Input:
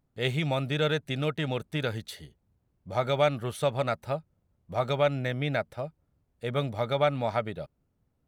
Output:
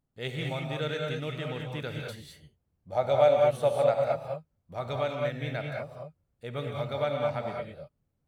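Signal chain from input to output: 2.92–4.12 band shelf 640 Hz +9 dB 1 oct; reverb, pre-delay 3 ms, DRR 0 dB; gain -7 dB

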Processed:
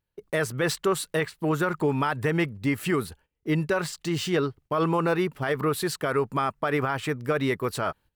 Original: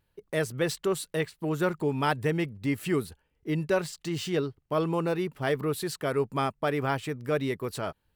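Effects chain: gate -55 dBFS, range -14 dB; dynamic EQ 1300 Hz, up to +8 dB, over -43 dBFS, Q 0.96; limiter -19.5 dBFS, peak gain reduction 11.5 dB; gain +4 dB

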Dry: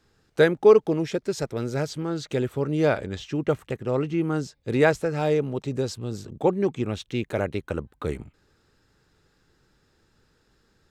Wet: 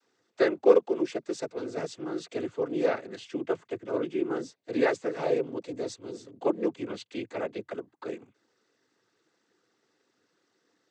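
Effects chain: noise vocoder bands 16; resonant low shelf 210 Hz -11 dB, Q 1.5; gain -6 dB

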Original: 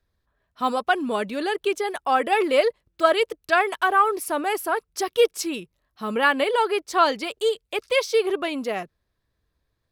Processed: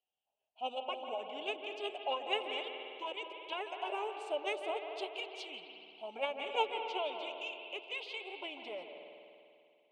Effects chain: compressor, threshold -20 dBFS, peak gain reduction 8.5 dB; double band-pass 1800 Hz, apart 2 oct; formant shift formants -4 st; reverb RT60 2.5 s, pre-delay 0.146 s, DRR 4.5 dB; gain -2.5 dB

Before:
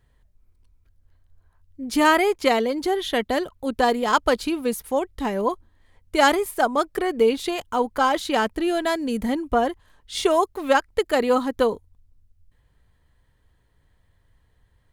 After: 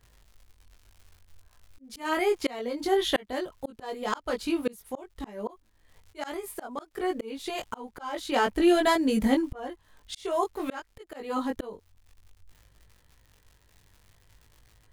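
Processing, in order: crackle 120/s -45 dBFS; chorus 0.54 Hz, delay 18.5 ms, depth 2.3 ms; auto swell 0.653 s; gain +4 dB

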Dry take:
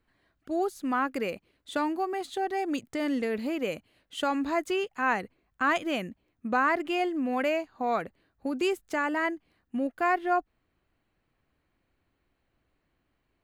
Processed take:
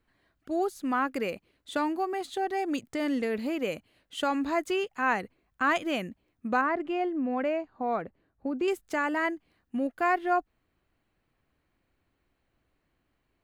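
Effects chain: 6.61–8.68 LPF 1100 Hz 6 dB/oct

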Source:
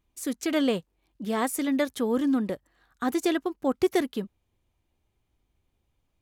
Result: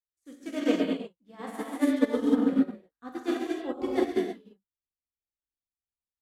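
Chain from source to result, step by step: high shelf 6800 Hz -12 dB; non-linear reverb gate 0.38 s flat, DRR -6 dB; upward expander 2.5:1, over -38 dBFS; gain -3 dB

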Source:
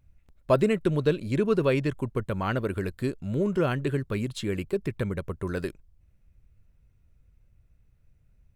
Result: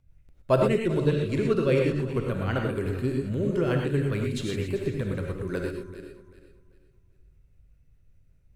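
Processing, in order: regenerating reverse delay 0.194 s, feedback 53%, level -11 dB; rotary speaker horn 5 Hz; non-linear reverb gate 0.14 s rising, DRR 1.5 dB

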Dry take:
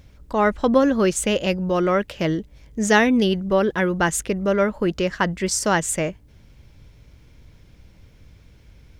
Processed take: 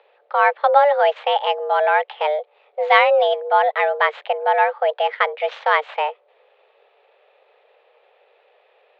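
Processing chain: median filter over 9 samples; mistuned SSB +290 Hz 200–3600 Hz; gain +3 dB

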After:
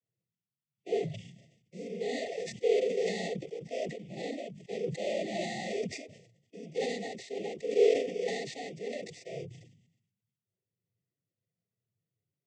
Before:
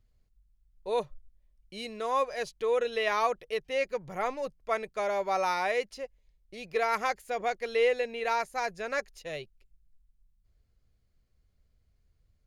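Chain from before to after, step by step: FFT order left unsorted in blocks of 16 samples; gate -59 dBFS, range -10 dB; fifteen-band EQ 160 Hz +5 dB, 400 Hz +8 dB, 1600 Hz +11 dB; one-sided clip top -28 dBFS; noise vocoder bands 16; harmonic-percussive split percussive -18 dB; brick-wall FIR band-stop 830–1800 Hz; sustainer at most 66 dB/s

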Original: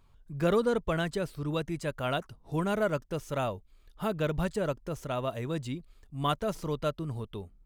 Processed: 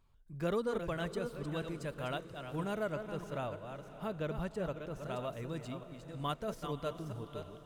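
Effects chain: reverse delay 0.324 s, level -7.5 dB; 2.92–5.04 high shelf 5000 Hz -7 dB; diffused feedback echo 0.574 s, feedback 52%, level -14 dB; gain -8 dB

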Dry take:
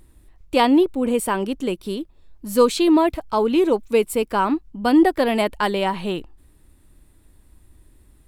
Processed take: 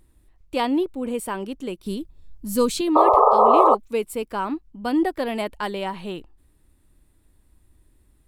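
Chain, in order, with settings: 1.86–2.81 tone controls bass +11 dB, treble +7 dB; 2.95–3.75 painted sound noise 390–1300 Hz -8 dBFS; gain -6.5 dB

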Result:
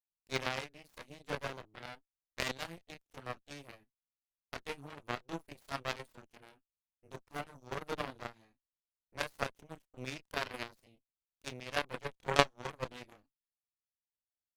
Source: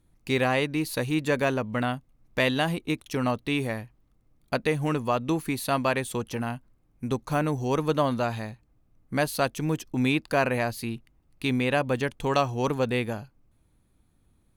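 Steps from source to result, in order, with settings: chorus voices 6, 0.17 Hz, delay 29 ms, depth 1.5 ms; added harmonics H 2 -17 dB, 3 -9 dB, 5 -38 dB, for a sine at -10.5 dBFS; gain +6.5 dB

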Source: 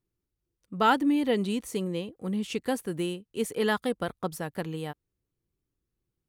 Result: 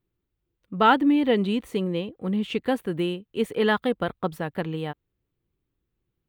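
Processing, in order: band shelf 7900 Hz -14 dB; gain +4.5 dB

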